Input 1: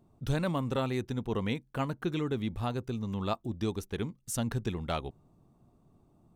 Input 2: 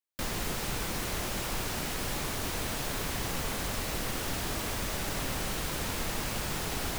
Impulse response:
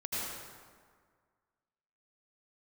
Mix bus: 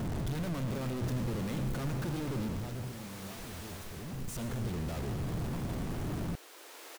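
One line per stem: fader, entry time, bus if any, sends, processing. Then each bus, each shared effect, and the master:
0:02.41 −9 dB → 0:02.99 −20.5 dB → 0:03.89 −20.5 dB → 0:04.32 −10.5 dB, 0.00 s, send −10.5 dB, sign of each sample alone; low-shelf EQ 420 Hz +9.5 dB
−12.0 dB, 0.85 s, no send, Butterworth high-pass 310 Hz 48 dB per octave; automatic ducking −7 dB, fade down 0.50 s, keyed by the first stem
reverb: on, RT60 1.8 s, pre-delay 73 ms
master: no processing

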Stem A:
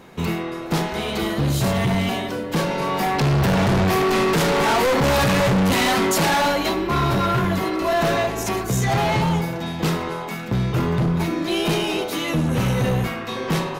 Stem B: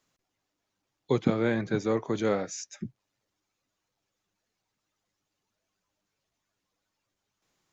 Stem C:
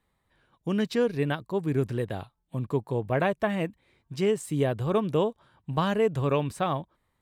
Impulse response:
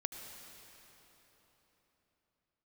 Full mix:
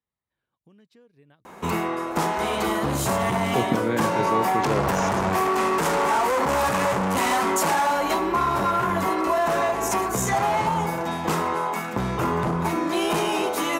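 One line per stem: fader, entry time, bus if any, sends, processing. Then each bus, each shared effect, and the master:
0.0 dB, 1.45 s, no send, octave-band graphic EQ 125/1,000/4,000/8,000 Hz −9/+8/−6/+5 dB; downward compressor, threshold −19 dBFS, peak gain reduction 7.5 dB
+0.5 dB, 2.45 s, no send, no processing
−17.5 dB, 0.00 s, no send, downward compressor 3 to 1, threshold −39 dBFS, peak gain reduction 14.5 dB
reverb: not used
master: high-pass filter 57 Hz

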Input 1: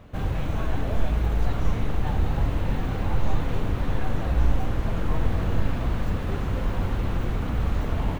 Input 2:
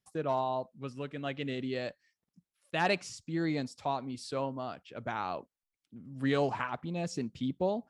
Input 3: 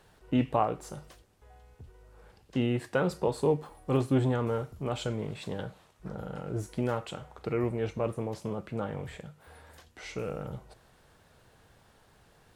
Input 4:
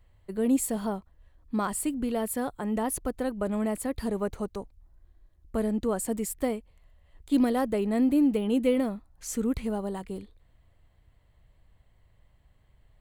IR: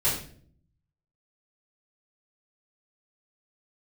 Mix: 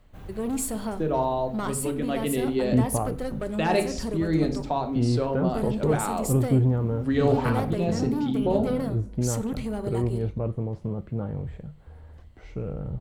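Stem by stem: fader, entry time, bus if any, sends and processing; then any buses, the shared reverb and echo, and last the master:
−14.0 dB, 0.00 s, no bus, no send, high-shelf EQ 9,600 Hz +10 dB; automatic ducking −10 dB, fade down 2.00 s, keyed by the fourth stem
0.0 dB, 0.85 s, bus A, send −17.5 dB, parametric band 330 Hz +10.5 dB 3 octaves
−5.5 dB, 2.40 s, no bus, no send, spectral tilt −4.5 dB per octave
0.0 dB, 0.00 s, bus A, send −20.5 dB, soft clipping −24.5 dBFS, distortion −12 dB
bus A: 0.0 dB, parametric band 5,000 Hz +5.5 dB 1.5 octaves; downward compressor 2.5 to 1, threshold −25 dBFS, peak gain reduction 7 dB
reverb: on, RT60 0.50 s, pre-delay 3 ms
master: no processing

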